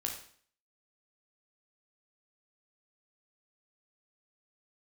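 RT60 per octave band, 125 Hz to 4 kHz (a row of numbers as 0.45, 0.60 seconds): 0.50, 0.55, 0.55, 0.50, 0.50, 0.50 seconds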